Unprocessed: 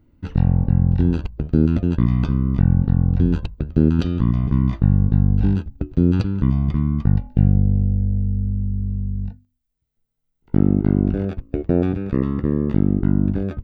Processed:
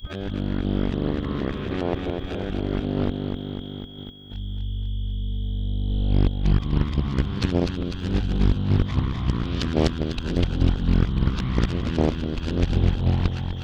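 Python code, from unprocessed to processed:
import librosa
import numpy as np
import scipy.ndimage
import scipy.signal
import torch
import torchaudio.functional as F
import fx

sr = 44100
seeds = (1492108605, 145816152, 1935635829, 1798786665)

p1 = x[::-1].copy()
p2 = fx.peak_eq(p1, sr, hz=160.0, db=-8.0, octaves=2.6)
p3 = p2 + fx.echo_feedback(p2, sr, ms=249, feedback_pct=58, wet_db=-4.5, dry=0)
p4 = p3 + 10.0 ** (-52.0 / 20.0) * np.sin(2.0 * np.pi * 3300.0 * np.arange(len(p3)) / sr)
p5 = fx.level_steps(p4, sr, step_db=20)
p6 = p4 + (p5 * librosa.db_to_amplitude(1.0))
p7 = fx.high_shelf(p6, sr, hz=2000.0, db=11.5)
p8 = fx.doppler_dist(p7, sr, depth_ms=0.95)
y = p8 * librosa.db_to_amplitude(-4.0)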